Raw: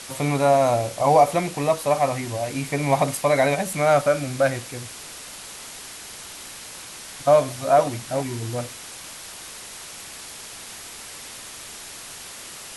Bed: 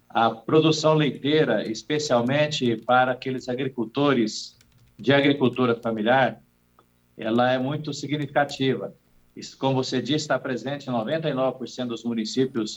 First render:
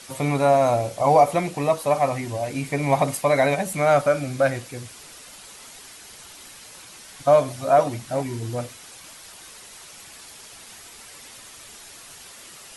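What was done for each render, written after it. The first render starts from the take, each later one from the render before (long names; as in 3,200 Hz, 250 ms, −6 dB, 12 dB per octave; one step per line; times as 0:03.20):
broadband denoise 7 dB, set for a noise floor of −39 dBFS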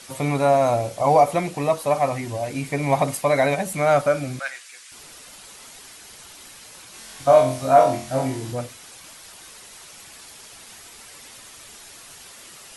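0:04.39–0:04.92: Chebyshev band-pass filter 1,600–9,000 Hz
0:06.91–0:08.52: flutter between parallel walls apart 3.9 metres, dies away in 0.41 s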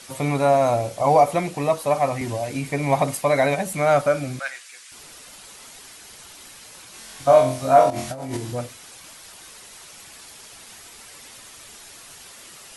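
0:02.21–0:02.71: multiband upward and downward compressor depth 70%
0:07.90–0:08.37: compressor whose output falls as the input rises −30 dBFS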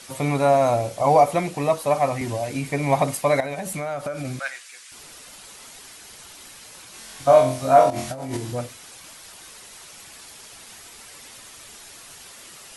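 0:03.40–0:04.25: downward compressor 8 to 1, threshold −25 dBFS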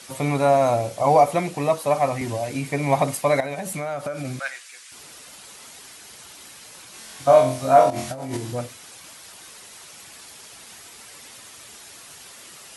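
high-pass filter 67 Hz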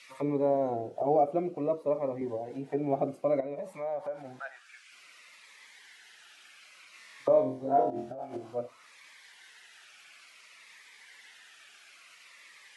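envelope filter 390–2,500 Hz, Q 2.1, down, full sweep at −22 dBFS
phaser whose notches keep moving one way falling 0.57 Hz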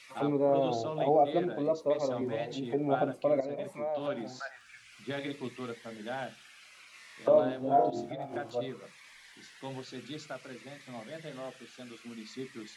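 mix in bed −18.5 dB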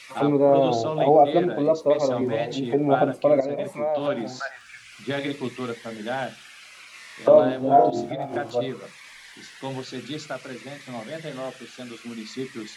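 level +9 dB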